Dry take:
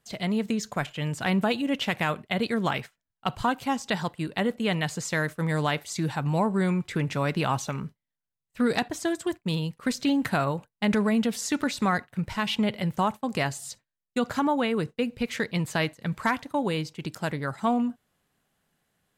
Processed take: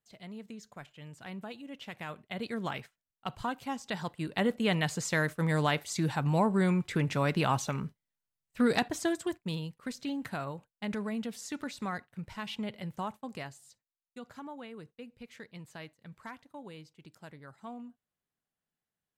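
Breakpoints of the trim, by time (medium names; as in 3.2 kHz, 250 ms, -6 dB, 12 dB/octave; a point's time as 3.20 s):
1.73 s -18 dB
2.54 s -9 dB
3.86 s -9 dB
4.46 s -2 dB
9.01 s -2 dB
9.91 s -11.5 dB
13.26 s -11.5 dB
13.69 s -19.5 dB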